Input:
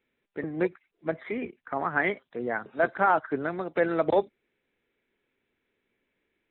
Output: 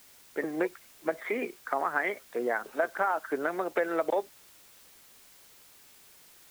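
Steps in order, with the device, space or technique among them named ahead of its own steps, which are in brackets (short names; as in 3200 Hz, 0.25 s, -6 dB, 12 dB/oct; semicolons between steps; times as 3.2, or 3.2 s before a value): baby monitor (BPF 400–3100 Hz; compressor, threshold -31 dBFS, peak gain reduction 13 dB; white noise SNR 23 dB); gain +6 dB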